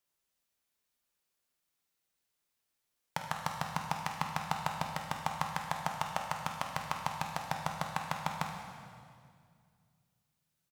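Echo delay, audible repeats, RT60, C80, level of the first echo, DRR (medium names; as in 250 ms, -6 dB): 50 ms, 1, 2.2 s, 5.5 dB, -11.5 dB, 1.0 dB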